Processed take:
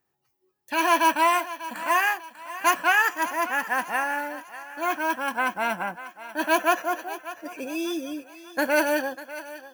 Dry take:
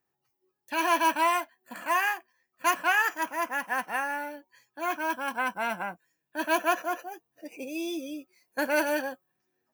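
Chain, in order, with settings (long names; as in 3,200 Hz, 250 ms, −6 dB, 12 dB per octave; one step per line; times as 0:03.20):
parametric band 63 Hz +4.5 dB 0.86 octaves
on a send: feedback echo with a high-pass in the loop 594 ms, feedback 45%, high-pass 420 Hz, level −14 dB
on the sum: level +4 dB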